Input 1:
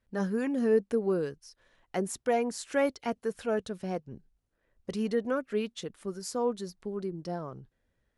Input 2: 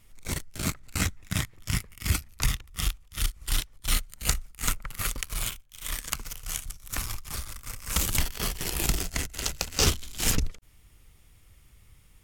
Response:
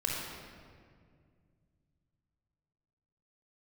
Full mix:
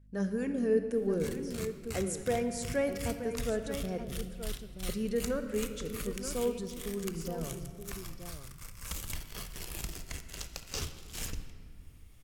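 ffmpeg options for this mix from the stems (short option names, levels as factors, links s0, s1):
-filter_complex "[0:a]equalizer=f=125:t=o:w=1:g=4,equalizer=f=1000:t=o:w=1:g=-8,equalizer=f=4000:t=o:w=1:g=-3,equalizer=f=8000:t=o:w=1:g=4,aeval=exprs='val(0)+0.00178*(sin(2*PI*50*n/s)+sin(2*PI*2*50*n/s)/2+sin(2*PI*3*50*n/s)/3+sin(2*PI*4*50*n/s)/4+sin(2*PI*5*50*n/s)/5)':c=same,volume=0.562,asplit=3[s0][s1][s2];[s1]volume=0.316[s3];[s2]volume=0.422[s4];[1:a]acompressor=threshold=0.00178:ratio=1.5,adelay=950,volume=0.631,asplit=2[s5][s6];[s6]volume=0.251[s7];[2:a]atrim=start_sample=2205[s8];[s3][s7]amix=inputs=2:normalize=0[s9];[s9][s8]afir=irnorm=-1:irlink=0[s10];[s4]aecho=0:1:927:1[s11];[s0][s5][s10][s11]amix=inputs=4:normalize=0"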